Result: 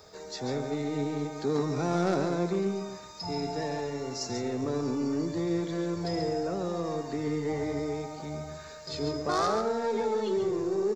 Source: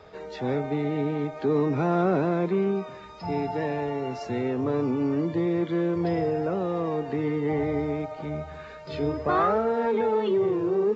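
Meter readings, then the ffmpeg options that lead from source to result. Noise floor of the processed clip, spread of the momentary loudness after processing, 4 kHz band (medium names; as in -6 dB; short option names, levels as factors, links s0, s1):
-45 dBFS, 9 LU, +6.0 dB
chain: -filter_complex "[0:a]aeval=exprs='0.251*(cos(1*acos(clip(val(0)/0.251,-1,1)))-cos(1*PI/2))+0.00794*(cos(2*acos(clip(val(0)/0.251,-1,1)))-cos(2*PI/2))+0.0631*(cos(3*acos(clip(val(0)/0.251,-1,1)))-cos(3*PI/2))+0.0158*(cos(5*acos(clip(val(0)/0.251,-1,1)))-cos(5*PI/2))+0.00224*(cos(8*acos(clip(val(0)/0.251,-1,1)))-cos(8*PI/2))':c=same,aexciter=amount=8.7:drive=6:freq=4400,asoftclip=type=tanh:threshold=0.211,asplit=2[s0][s1];[s1]aecho=0:1:139:0.422[s2];[s0][s2]amix=inputs=2:normalize=0"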